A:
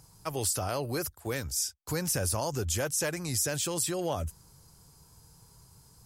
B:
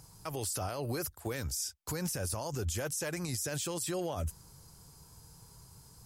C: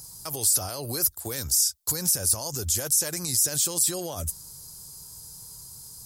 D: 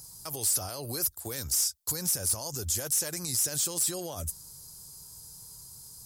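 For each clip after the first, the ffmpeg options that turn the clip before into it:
-af "alimiter=level_in=1.58:limit=0.0631:level=0:latency=1:release=71,volume=0.631,volume=1.19"
-af "aexciter=amount=2.8:drive=8:freq=3700,volume=1.19"
-af "asoftclip=type=hard:threshold=0.141,volume=0.631"

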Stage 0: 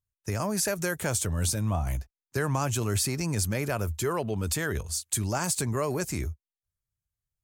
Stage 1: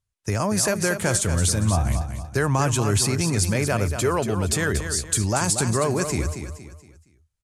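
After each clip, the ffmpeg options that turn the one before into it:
-af "lowpass=f=11000:w=0.5412,lowpass=f=11000:w=1.3066,aecho=1:1:234|468|702|936:0.376|0.139|0.0515|0.019,volume=2"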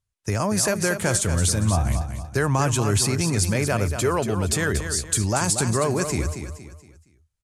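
-af anull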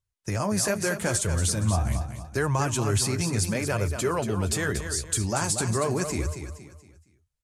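-af "flanger=delay=1.9:depth=8.6:regen=-44:speed=0.79:shape=sinusoidal"

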